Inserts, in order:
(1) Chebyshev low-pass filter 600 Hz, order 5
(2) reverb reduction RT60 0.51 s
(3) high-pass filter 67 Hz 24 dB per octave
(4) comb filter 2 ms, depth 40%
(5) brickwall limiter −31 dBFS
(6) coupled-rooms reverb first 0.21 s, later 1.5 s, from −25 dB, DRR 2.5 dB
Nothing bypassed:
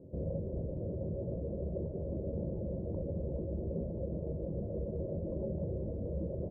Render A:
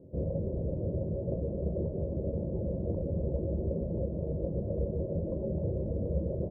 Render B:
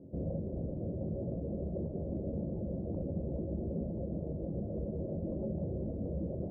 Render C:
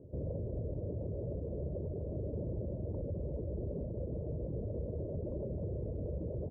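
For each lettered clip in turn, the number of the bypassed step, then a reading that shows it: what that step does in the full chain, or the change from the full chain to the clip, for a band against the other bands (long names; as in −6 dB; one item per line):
5, average gain reduction 4.0 dB
4, 500 Hz band −4.0 dB
6, change in crest factor −4.0 dB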